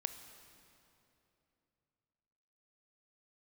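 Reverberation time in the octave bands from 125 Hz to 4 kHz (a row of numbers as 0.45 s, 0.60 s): 3.7 s, 3.3 s, 3.2 s, 2.8 s, 2.5 s, 2.3 s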